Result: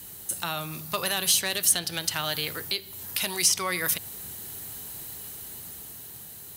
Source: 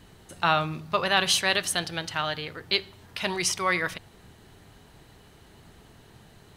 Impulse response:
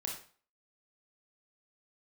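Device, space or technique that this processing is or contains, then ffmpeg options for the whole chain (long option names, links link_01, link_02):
FM broadcast chain: -filter_complex "[0:a]highpass=53,dynaudnorm=framelen=250:gausssize=11:maxgain=4dB,acrossover=split=550|6500[link_01][link_02][link_03];[link_01]acompressor=threshold=-33dB:ratio=4[link_04];[link_02]acompressor=threshold=-29dB:ratio=4[link_05];[link_03]acompressor=threshold=-47dB:ratio=4[link_06];[link_04][link_05][link_06]amix=inputs=3:normalize=0,aemphasis=mode=production:type=50fm,alimiter=limit=-15.5dB:level=0:latency=1:release=374,asoftclip=type=hard:threshold=-19dB,lowpass=frequency=15000:width=0.5412,lowpass=frequency=15000:width=1.3066,aemphasis=mode=production:type=50fm"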